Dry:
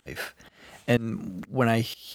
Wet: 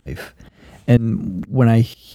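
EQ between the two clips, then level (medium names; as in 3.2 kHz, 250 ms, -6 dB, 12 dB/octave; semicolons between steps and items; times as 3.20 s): bass shelf 170 Hz +6.5 dB; bass shelf 450 Hz +11.5 dB; -1.0 dB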